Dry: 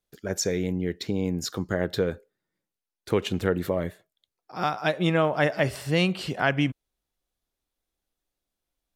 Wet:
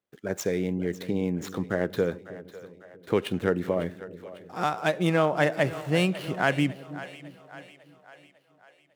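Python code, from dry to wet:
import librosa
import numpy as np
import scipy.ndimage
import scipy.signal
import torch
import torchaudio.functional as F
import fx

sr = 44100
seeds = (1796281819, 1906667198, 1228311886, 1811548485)

y = scipy.signal.medfilt(x, 9)
y = scipy.signal.sosfilt(scipy.signal.butter(2, 120.0, 'highpass', fs=sr, output='sos'), y)
y = fx.echo_split(y, sr, split_hz=460.0, low_ms=319, high_ms=550, feedback_pct=52, wet_db=-15.0)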